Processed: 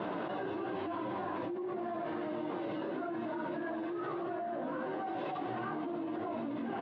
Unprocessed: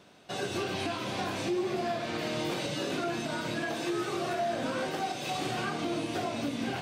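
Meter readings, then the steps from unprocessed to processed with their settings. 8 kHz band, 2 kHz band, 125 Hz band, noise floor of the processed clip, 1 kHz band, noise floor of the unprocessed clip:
under -40 dB, -9.0 dB, -10.0 dB, -39 dBFS, -4.0 dB, -38 dBFS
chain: speaker cabinet 150–2600 Hz, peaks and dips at 330 Hz +9 dB, 630 Hz +4 dB, 990 Hz +8 dB, 2400 Hz -9 dB; limiter -24 dBFS, peak gain reduction 7 dB; air absorption 61 m; on a send: echo 91 ms -13 dB; on the sum: chorus voices 4, 0.82 Hz, delay 14 ms, depth 4.9 ms; fast leveller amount 100%; gain -8.5 dB

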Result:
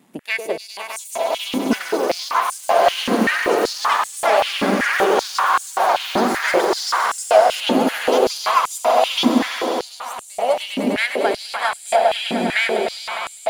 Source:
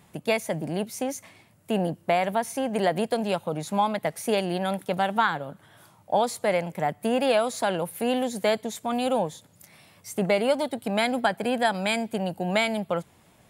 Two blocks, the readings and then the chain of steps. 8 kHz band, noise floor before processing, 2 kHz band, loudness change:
+9.5 dB, -59 dBFS, +10.0 dB, +7.5 dB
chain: half-wave gain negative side -7 dB; swelling echo 0.101 s, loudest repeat 5, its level -7.5 dB; echoes that change speed 0.793 s, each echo +7 st, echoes 2; stepped high-pass 5.2 Hz 250–7900 Hz; gain +1.5 dB

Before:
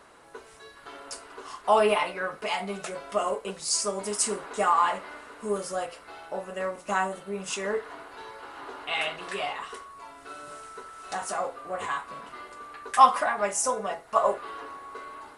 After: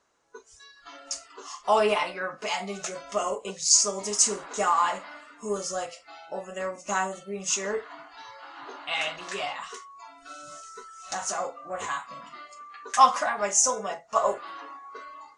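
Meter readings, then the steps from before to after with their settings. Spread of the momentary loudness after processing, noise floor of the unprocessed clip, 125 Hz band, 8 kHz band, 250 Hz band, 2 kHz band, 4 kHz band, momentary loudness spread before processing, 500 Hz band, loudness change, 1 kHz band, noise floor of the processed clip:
23 LU, -51 dBFS, -1.0 dB, +7.5 dB, -1.0 dB, -0.5 dB, +3.5 dB, 20 LU, -1.0 dB, +1.0 dB, -1.0 dB, -55 dBFS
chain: spectral noise reduction 17 dB; synth low-pass 6500 Hz, resonance Q 4.7; gain -1 dB

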